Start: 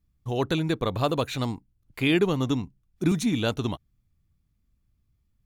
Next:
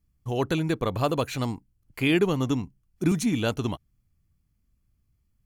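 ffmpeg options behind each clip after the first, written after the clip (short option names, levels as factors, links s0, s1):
-af "equalizer=f=12000:t=o:w=1.4:g=3,bandreject=f=3700:w=7.2"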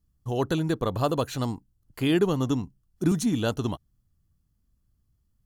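-af "equalizer=f=2300:w=4:g=-12"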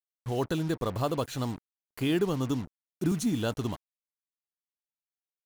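-filter_complex "[0:a]asplit=2[s0][s1];[s1]alimiter=limit=0.126:level=0:latency=1:release=264,volume=0.794[s2];[s0][s2]amix=inputs=2:normalize=0,acrusher=bits=5:mix=0:aa=0.5,volume=0.422"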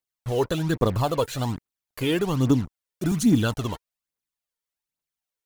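-af "aphaser=in_gain=1:out_gain=1:delay=2.3:decay=0.54:speed=1.2:type=triangular,volume=1.68"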